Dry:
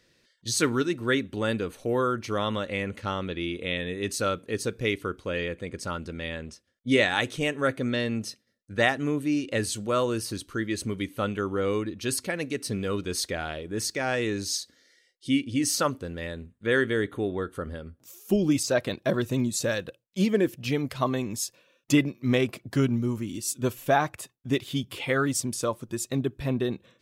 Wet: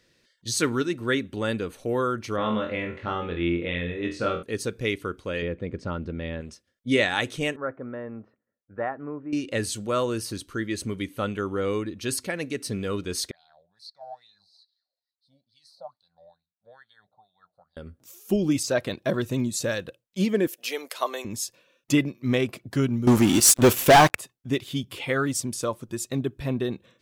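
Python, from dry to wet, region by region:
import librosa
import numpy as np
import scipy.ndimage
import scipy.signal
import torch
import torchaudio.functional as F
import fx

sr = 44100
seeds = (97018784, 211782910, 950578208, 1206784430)

y = fx.chain(x, sr, fx.lowpass(hz=2700.0, slope=12),
    fx.room_flutter(wall_m=4.0, rt60_s=0.35), at=(2.36, 4.43))
y = fx.chain(y, sr, fx.lowpass(hz=3900.0, slope=12),
    fx.tilt_shelf(db=5.0, hz=830.0), at=(5.42, 6.41))
y = fx.chain(y, sr, fx.lowpass(hz=1300.0, slope=24),
    fx.low_shelf(hz=440.0, db=-12.0), at=(7.56, 9.33))
y = fx.chain(y, sr, fx.curve_eq(hz=(180.0, 290.0, 420.0, 760.0, 1200.0, 2800.0, 4100.0, 6600.0, 9600.0), db=(0, -24, -25, 3, -13, -30, 14, -10, 1)),
    fx.wah_lfo(hz=2.3, low_hz=550.0, high_hz=2900.0, q=7.9), at=(13.31, 17.77))
y = fx.chain(y, sr, fx.highpass(hz=430.0, slope=24),
    fx.high_shelf(hz=5700.0, db=10.5), at=(20.47, 21.25))
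y = fx.chain(y, sr, fx.low_shelf(hz=160.0, db=-9.5),
    fx.leveller(passes=5), at=(23.07, 24.15))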